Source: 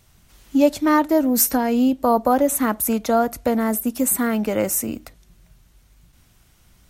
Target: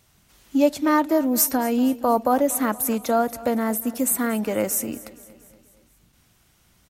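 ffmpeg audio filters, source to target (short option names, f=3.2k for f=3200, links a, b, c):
-af "lowshelf=f=68:g=-12,aecho=1:1:235|470|705|940|1175:0.112|0.0628|0.0352|0.0197|0.011,volume=-2dB"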